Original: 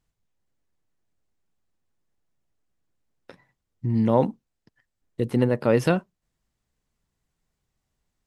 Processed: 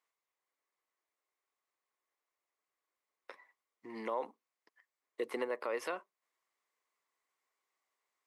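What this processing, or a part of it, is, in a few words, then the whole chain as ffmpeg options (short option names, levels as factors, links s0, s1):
laptop speaker: -af "highpass=f=390:w=0.5412,highpass=f=390:w=1.3066,equalizer=f=1100:t=o:w=0.39:g=11,equalizer=f=2100:t=o:w=0.37:g=9,alimiter=limit=0.1:level=0:latency=1:release=261,volume=0.501"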